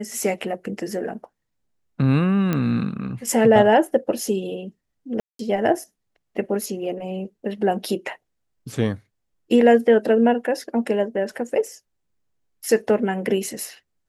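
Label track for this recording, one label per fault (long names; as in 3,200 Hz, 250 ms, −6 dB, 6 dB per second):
2.530000	2.530000	click −10 dBFS
5.200000	5.390000	drop-out 193 ms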